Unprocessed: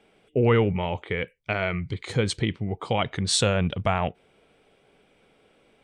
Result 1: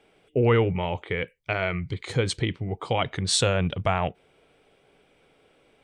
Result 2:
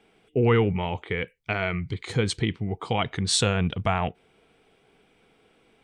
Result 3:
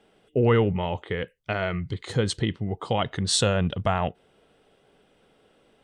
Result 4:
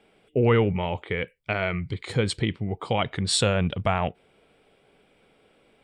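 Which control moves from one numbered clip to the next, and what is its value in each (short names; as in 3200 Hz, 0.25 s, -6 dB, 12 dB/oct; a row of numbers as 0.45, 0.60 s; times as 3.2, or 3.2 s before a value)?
notch, frequency: 210, 570, 2300, 6200 Hz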